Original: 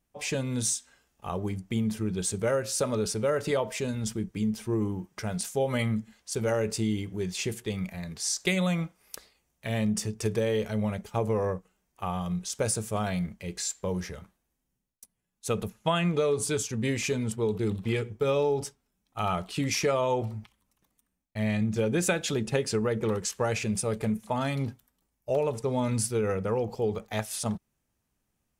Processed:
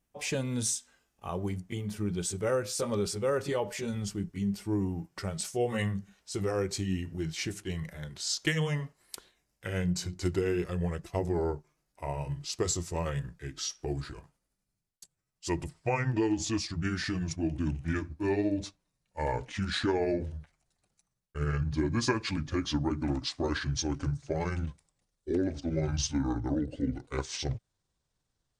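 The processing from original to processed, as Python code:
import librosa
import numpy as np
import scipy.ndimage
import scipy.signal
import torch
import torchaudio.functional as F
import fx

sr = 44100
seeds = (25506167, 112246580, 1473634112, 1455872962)

y = fx.pitch_glide(x, sr, semitones=-9.0, runs='starting unshifted')
y = y * librosa.db_to_amplitude(-1.5)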